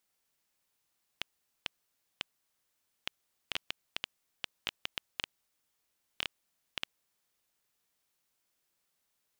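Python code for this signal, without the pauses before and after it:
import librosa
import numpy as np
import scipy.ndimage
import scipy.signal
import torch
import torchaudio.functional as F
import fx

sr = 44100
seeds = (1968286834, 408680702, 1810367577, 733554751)

y = fx.geiger_clicks(sr, seeds[0], length_s=5.76, per_s=3.8, level_db=-14.5)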